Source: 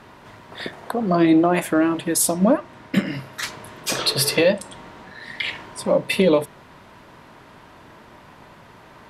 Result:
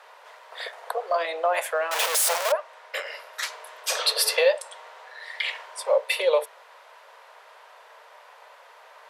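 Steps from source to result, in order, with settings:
0:01.91–0:02.52: sign of each sample alone
Butterworth high-pass 460 Hz 72 dB per octave
level −2 dB

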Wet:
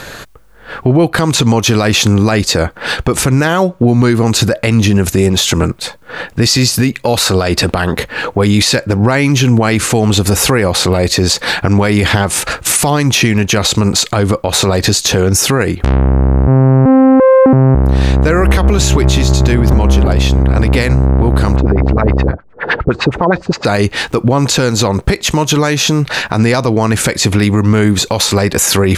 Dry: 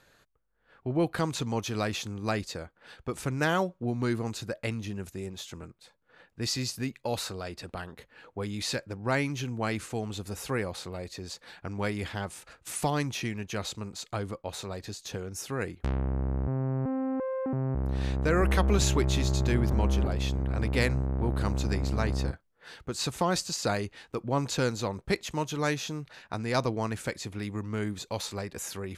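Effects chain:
downward compressor 8 to 1, threshold −38 dBFS, peak gain reduction 18 dB
0:21.56–0:23.65: auto-filter low-pass sine 9.7 Hz 370–2,300 Hz
boost into a limiter +34.5 dB
level −1 dB

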